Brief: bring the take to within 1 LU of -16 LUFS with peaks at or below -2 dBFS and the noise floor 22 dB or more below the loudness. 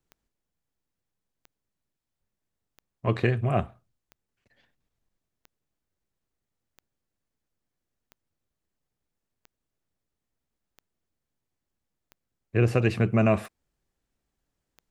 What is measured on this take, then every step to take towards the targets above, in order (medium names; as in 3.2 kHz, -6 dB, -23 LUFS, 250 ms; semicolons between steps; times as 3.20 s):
clicks found 12; loudness -25.5 LUFS; peak level -8.5 dBFS; loudness target -16.0 LUFS
-> de-click; trim +9.5 dB; peak limiter -2 dBFS